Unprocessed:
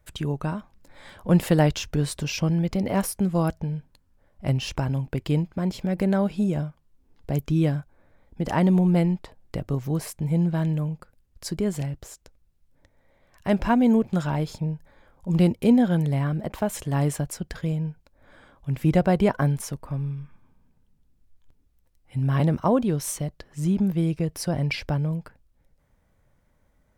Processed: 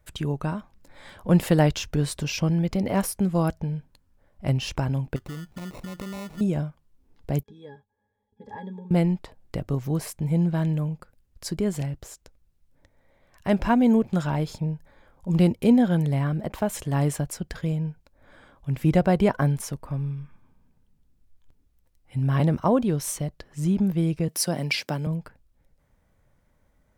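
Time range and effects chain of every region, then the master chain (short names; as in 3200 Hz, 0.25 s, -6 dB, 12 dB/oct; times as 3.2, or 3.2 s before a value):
5.16–6.41 compressor 4:1, threshold -34 dBFS + sample-rate reducer 1600 Hz
7.43–8.91 tone controls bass -11 dB, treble +8 dB + octave resonator G#, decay 0.11 s
24.28–25.07 HPF 160 Hz 24 dB/oct + high shelf 3600 Hz +10 dB
whole clip: dry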